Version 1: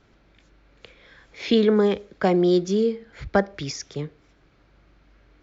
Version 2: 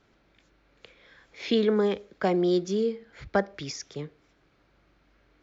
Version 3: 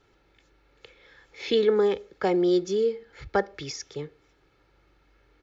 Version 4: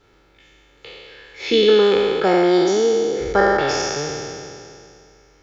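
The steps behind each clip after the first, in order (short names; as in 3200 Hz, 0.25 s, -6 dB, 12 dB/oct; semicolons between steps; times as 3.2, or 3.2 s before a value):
low shelf 130 Hz -7 dB; gain -4 dB
comb 2.3 ms, depth 50%
spectral trails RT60 2.47 s; gain +5 dB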